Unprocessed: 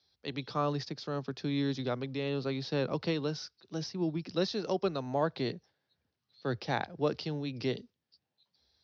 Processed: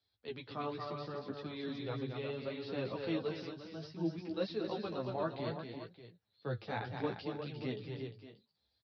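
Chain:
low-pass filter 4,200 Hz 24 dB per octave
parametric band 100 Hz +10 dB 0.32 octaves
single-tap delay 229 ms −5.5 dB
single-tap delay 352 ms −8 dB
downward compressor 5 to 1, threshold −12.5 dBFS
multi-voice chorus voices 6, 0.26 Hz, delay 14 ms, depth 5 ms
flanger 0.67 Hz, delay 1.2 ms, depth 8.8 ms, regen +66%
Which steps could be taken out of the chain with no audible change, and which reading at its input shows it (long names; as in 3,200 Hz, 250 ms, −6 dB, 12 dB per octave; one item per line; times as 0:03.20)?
downward compressor, threshold −12.5 dBFS: peak of its input −16.5 dBFS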